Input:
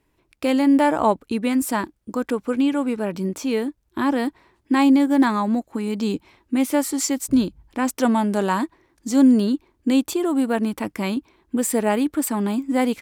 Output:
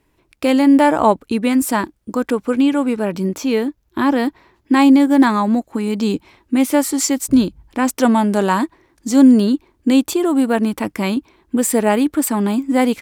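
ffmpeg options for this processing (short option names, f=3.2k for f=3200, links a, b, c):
-filter_complex "[0:a]asettb=1/sr,asplit=3[a][b][c];[a]atrim=end=3.344[d];[b]atrim=start=3.34:end=4.74,asetpts=PTS-STARTPTS,afade=t=in:d=0.004:c=qsin,afade=t=out:st=1.396:d=0.004:c=qsin,equalizer=f=8.8k:w=5.2:g=-11.5[e];[c]atrim=start=4.736[f];[d][e]acrossfade=d=0.004:c1=hsin:c2=qsin[g];[g][f]acrossfade=d=0.004:c1=qsin:c2=hsin,volume=5dB"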